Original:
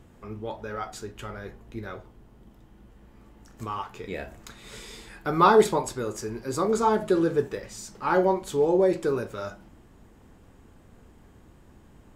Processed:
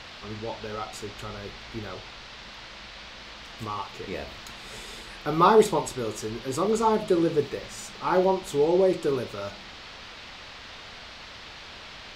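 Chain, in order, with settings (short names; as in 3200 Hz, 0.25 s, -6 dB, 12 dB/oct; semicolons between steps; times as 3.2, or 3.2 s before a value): band noise 450–4500 Hz -44 dBFS; dynamic EQ 1600 Hz, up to -6 dB, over -48 dBFS, Q 4.1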